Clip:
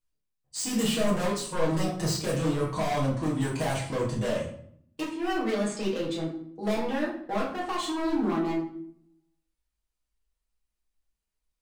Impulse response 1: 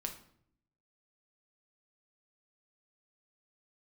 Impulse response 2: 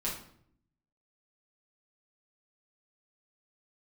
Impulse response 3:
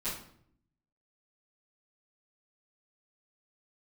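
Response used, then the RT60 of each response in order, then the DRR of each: 2; 0.65 s, 0.65 s, 0.65 s; 3.5 dB, -6.0 dB, -15.5 dB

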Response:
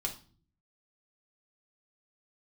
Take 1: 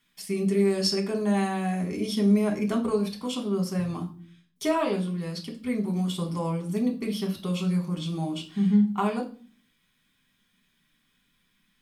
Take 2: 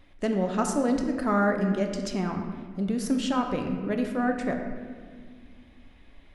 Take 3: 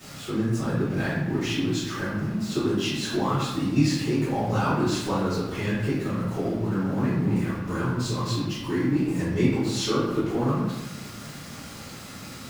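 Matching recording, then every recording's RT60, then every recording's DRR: 1; 0.45 s, 1.8 s, 1.0 s; 0.0 dB, 3.0 dB, -16.0 dB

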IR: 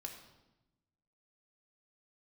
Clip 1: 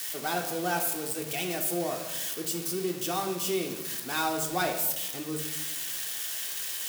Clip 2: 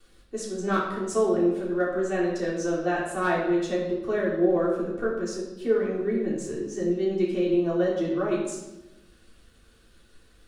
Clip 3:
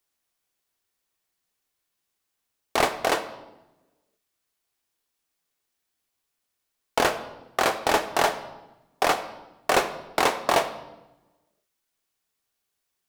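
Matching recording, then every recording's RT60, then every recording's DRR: 1; 1.0 s, 0.95 s, 1.0 s; 1.5 dB, -8.5 dB, 8.0 dB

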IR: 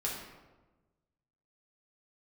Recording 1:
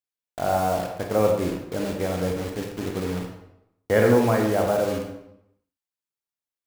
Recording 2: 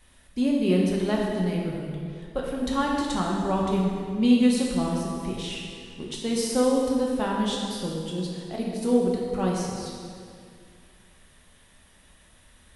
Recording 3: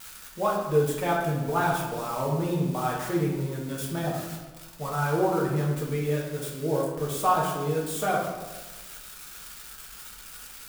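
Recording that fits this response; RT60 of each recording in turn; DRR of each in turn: 3; 0.80 s, 2.3 s, 1.2 s; 2.0 dB, -3.0 dB, -4.5 dB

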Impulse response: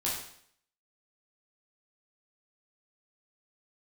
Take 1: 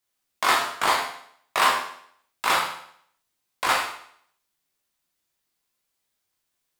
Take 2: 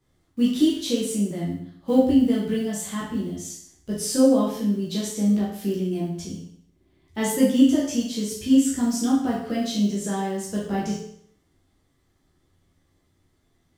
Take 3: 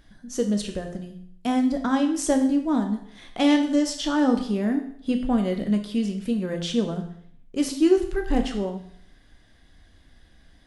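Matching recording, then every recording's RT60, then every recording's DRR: 2; 0.65 s, 0.65 s, 0.65 s; -2.5 dB, -6.5 dB, 4.5 dB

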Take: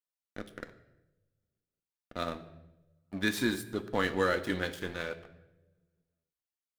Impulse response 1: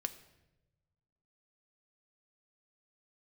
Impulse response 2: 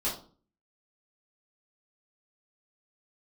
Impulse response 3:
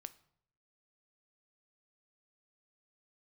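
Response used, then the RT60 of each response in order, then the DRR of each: 1; 1.0 s, 0.40 s, 0.70 s; 9.0 dB, -7.5 dB, 13.0 dB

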